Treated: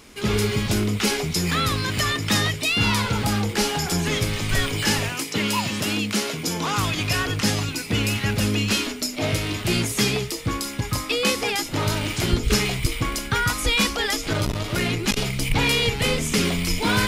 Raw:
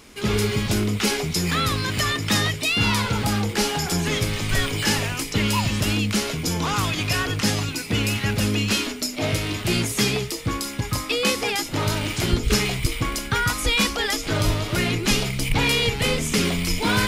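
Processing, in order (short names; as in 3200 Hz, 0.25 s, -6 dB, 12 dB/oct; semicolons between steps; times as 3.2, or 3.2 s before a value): 5.09–6.77 HPF 170 Hz 12 dB/oct; 14.33–15.17 core saturation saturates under 270 Hz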